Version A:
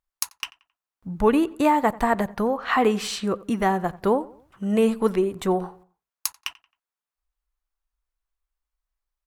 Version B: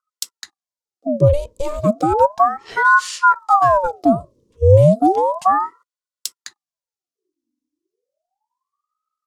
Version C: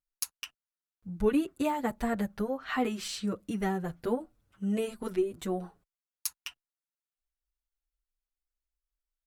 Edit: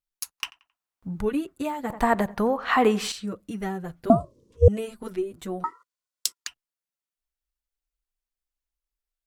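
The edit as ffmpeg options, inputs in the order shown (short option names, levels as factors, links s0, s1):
-filter_complex "[0:a]asplit=2[s0][s1];[1:a]asplit=2[s2][s3];[2:a]asplit=5[s4][s5][s6][s7][s8];[s4]atrim=end=0.382[s9];[s0]atrim=start=0.378:end=1.212[s10];[s5]atrim=start=1.208:end=1.902[s11];[s1]atrim=start=1.898:end=3.122[s12];[s6]atrim=start=3.118:end=4.102[s13];[s2]atrim=start=4.098:end=4.682[s14];[s7]atrim=start=4.678:end=5.642[s15];[s3]atrim=start=5.638:end=6.472[s16];[s8]atrim=start=6.468[s17];[s9][s10]acrossfade=d=0.004:c1=hsin:c2=hsin[s18];[s18][s11]acrossfade=d=0.004:c1=hsin:c2=hsin[s19];[s19][s12]acrossfade=d=0.004:c1=hsin:c2=hsin[s20];[s20][s13]acrossfade=d=0.004:c1=hsin:c2=hsin[s21];[s21][s14]acrossfade=d=0.004:c1=hsin:c2=hsin[s22];[s22][s15]acrossfade=d=0.004:c1=hsin:c2=hsin[s23];[s23][s16]acrossfade=d=0.004:c1=hsin:c2=hsin[s24];[s24][s17]acrossfade=d=0.004:c1=hsin:c2=hsin"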